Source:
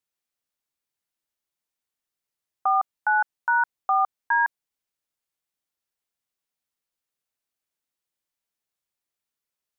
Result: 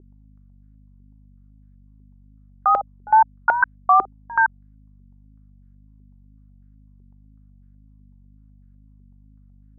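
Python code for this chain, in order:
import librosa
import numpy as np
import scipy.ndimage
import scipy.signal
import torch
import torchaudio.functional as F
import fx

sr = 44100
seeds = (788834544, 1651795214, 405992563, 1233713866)

y = fx.add_hum(x, sr, base_hz=50, snr_db=20)
y = fx.wow_flutter(y, sr, seeds[0], rate_hz=2.1, depth_cents=77.0)
y = fx.filter_held_lowpass(y, sr, hz=8.0, low_hz=380.0, high_hz=1600.0)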